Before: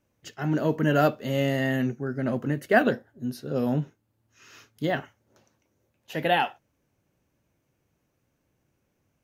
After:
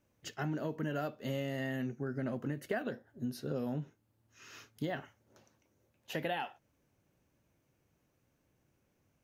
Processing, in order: compression 8:1, threshold -31 dBFS, peak gain reduction 17 dB; trim -2 dB

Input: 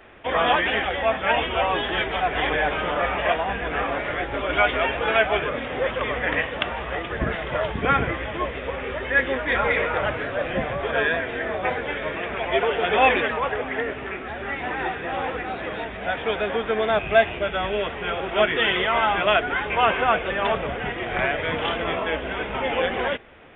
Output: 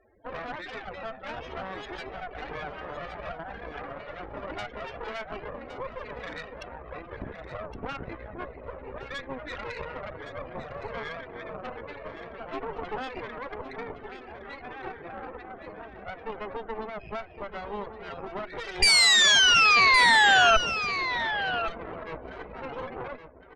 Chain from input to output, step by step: loudest bins only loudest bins 16; treble shelf 2.1 kHz -7 dB; compression 4:1, threshold -24 dBFS, peak gain reduction 10.5 dB; saturation -21 dBFS, distortion -19 dB; painted sound fall, 18.82–20.57 s, 650–2400 Hz -13 dBFS; dynamic bell 340 Hz, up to +6 dB, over -35 dBFS, Q 1.9; Chebyshev shaper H 3 -8 dB, 5 -20 dB, 6 -11 dB, 8 -9 dB, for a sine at 0 dBFS; delay 1115 ms -10.5 dB

